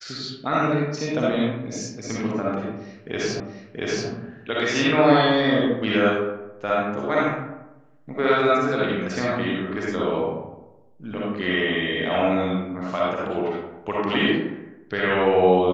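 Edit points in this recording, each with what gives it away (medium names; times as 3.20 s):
3.40 s: repeat of the last 0.68 s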